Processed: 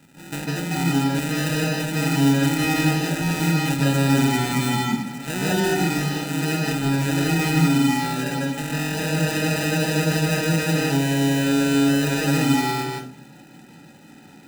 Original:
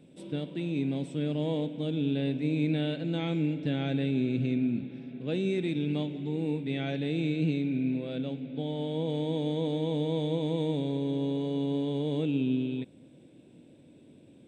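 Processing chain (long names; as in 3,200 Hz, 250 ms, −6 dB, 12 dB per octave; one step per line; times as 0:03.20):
sample-rate reduction 1,100 Hz, jitter 0%
convolution reverb RT60 0.40 s, pre-delay 145 ms, DRR −3.5 dB
level +7 dB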